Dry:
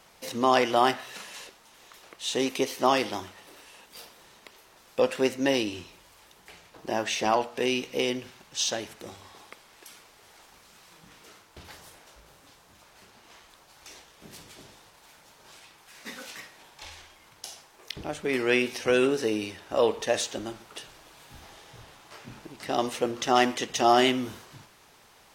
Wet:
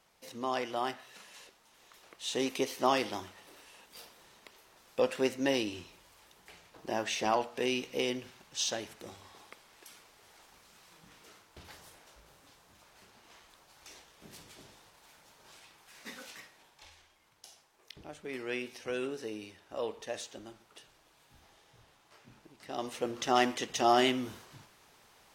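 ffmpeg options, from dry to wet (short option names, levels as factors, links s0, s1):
-af "volume=1.41,afade=t=in:st=1.12:d=1.35:silence=0.446684,afade=t=out:st=16.04:d=0.91:silence=0.398107,afade=t=in:st=22.67:d=0.54:silence=0.398107"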